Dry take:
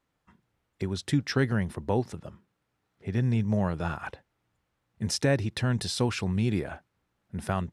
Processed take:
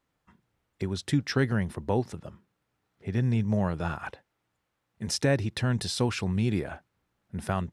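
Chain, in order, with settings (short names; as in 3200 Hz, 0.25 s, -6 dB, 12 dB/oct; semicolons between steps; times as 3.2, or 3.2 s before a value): 4.13–5.08 low shelf 170 Hz -8 dB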